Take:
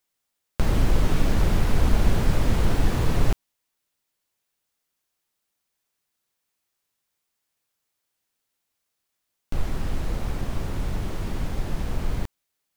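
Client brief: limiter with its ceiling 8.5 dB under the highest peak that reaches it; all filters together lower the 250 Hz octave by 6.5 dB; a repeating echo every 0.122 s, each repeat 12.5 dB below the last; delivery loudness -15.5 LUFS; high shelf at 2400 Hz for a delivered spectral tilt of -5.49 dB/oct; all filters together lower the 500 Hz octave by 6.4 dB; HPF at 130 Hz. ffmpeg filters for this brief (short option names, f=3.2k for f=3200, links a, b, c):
-af "highpass=130,equalizer=f=250:t=o:g=-7,equalizer=f=500:t=o:g=-5.5,highshelf=f=2.4k:g=-8,alimiter=level_in=0.5dB:limit=-24dB:level=0:latency=1,volume=-0.5dB,aecho=1:1:122|244|366:0.237|0.0569|0.0137,volume=21dB"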